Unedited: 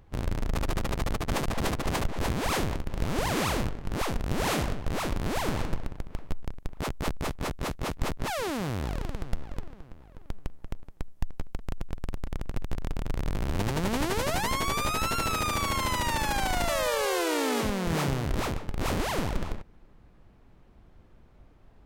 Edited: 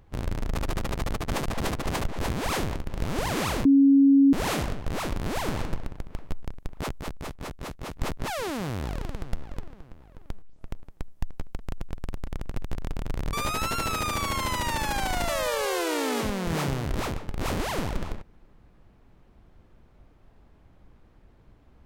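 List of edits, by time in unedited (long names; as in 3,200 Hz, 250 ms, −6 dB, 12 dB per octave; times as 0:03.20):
0:03.65–0:04.33: beep over 276 Hz −13.5 dBFS
0:07.00–0:07.96: clip gain −5 dB
0:10.42: tape start 0.26 s
0:13.33–0:14.73: remove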